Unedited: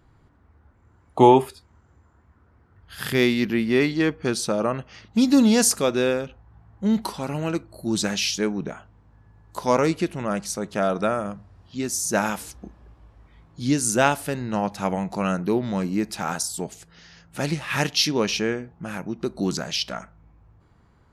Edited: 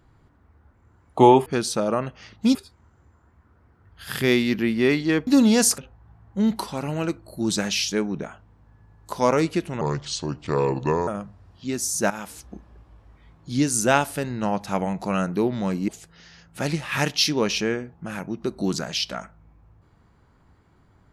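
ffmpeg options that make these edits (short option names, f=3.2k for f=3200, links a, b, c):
-filter_complex "[0:a]asplit=9[a][b][c][d][e][f][g][h][i];[a]atrim=end=1.462[j];[b]atrim=start=4.178:end=5.272[k];[c]atrim=start=1.458:end=4.182[l];[d]atrim=start=5.268:end=5.782[m];[e]atrim=start=6.238:end=10.274[n];[f]atrim=start=10.27:end=11.18,asetpts=PTS-STARTPTS,asetrate=31752,aresample=44100[o];[g]atrim=start=11.176:end=12.21,asetpts=PTS-STARTPTS,afade=t=out:st=1.03:d=0.004:c=hsin:silence=0.223872[p];[h]atrim=start=12.21:end=15.992,asetpts=PTS-STARTPTS,afade=t=in:d=0.41:silence=0.223872[q];[i]atrim=start=16.668[r];[j][k]acrossfade=d=0.004:c1=hsin:c2=hsin[s];[s][l]acrossfade=d=0.004:c1=hsin:c2=hsin[t];[t][m]acrossfade=d=0.004:c1=hsin:c2=hsin[u];[u][n]acrossfade=d=0.004:c1=hsin:c2=hsin[v];[v][o]acrossfade=d=0.004:c1=hsin:c2=hsin[w];[p][q]concat=n=2:v=0:a=1[x];[w][x]acrossfade=d=0.004:c1=hsin:c2=hsin[y];[y][r]acrossfade=d=0.004:c1=hsin:c2=hsin"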